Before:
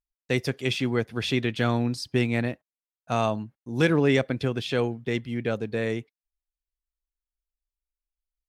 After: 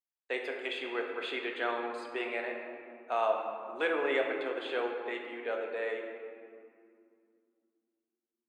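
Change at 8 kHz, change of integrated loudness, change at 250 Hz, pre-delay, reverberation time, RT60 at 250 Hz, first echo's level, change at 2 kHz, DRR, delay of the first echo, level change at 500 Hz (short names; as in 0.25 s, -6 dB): under -15 dB, -8.0 dB, -16.0 dB, 3 ms, 2.4 s, 3.7 s, none, -4.0 dB, 1.0 dB, none, -5.5 dB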